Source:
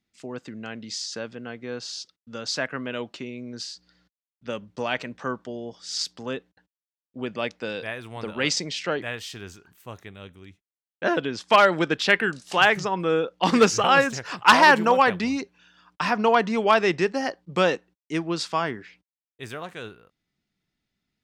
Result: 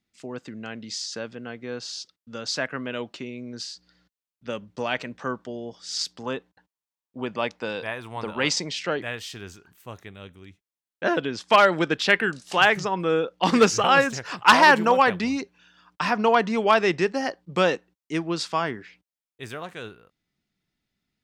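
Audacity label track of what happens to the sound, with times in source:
6.230000	8.710000	peaking EQ 950 Hz +7.5 dB 0.66 oct

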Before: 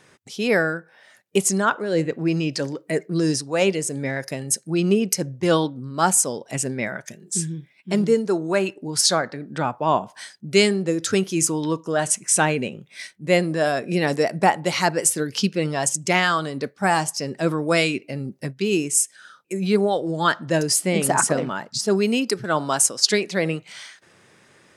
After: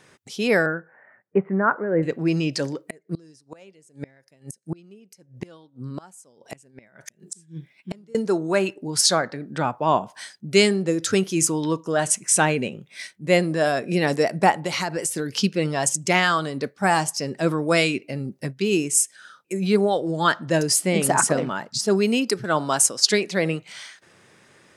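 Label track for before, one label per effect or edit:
0.660000	2.030000	steep low-pass 2 kHz 48 dB/octave
2.740000	8.150000	inverted gate shuts at -17 dBFS, range -29 dB
14.510000	15.350000	compression, threshold -21 dBFS

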